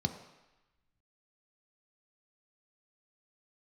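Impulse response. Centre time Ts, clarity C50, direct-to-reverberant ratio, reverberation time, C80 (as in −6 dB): 15 ms, 10.0 dB, 6.0 dB, 1.0 s, 11.5 dB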